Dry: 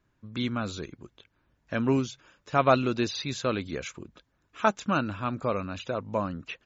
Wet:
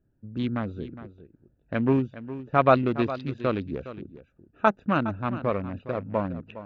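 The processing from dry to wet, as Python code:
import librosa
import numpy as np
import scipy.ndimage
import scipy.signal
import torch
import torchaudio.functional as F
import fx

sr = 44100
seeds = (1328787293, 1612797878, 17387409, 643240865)

p1 = fx.wiener(x, sr, points=41)
p2 = scipy.signal.sosfilt(scipy.signal.butter(2, 3100.0, 'lowpass', fs=sr, output='sos'), p1)
p3 = p2 + fx.echo_single(p2, sr, ms=412, db=-14.0, dry=0)
y = F.gain(torch.from_numpy(p3), 3.0).numpy()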